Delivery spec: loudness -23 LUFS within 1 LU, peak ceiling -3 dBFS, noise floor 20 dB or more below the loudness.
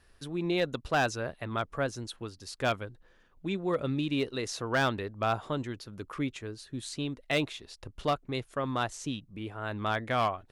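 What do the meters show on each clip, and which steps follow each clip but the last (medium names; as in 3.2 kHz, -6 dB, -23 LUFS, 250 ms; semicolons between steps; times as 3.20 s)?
clipped samples 0.4%; clipping level -20.0 dBFS; loudness -32.5 LUFS; peak level -20.0 dBFS; loudness target -23.0 LUFS
-> clip repair -20 dBFS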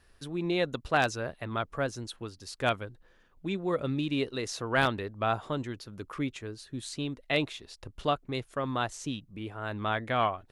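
clipped samples 0.0%; loudness -32.5 LUFS; peak level -11.0 dBFS; loudness target -23.0 LUFS
-> trim +9.5 dB; peak limiter -3 dBFS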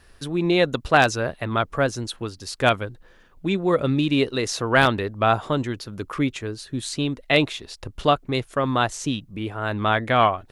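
loudness -23.0 LUFS; peak level -3.0 dBFS; noise floor -53 dBFS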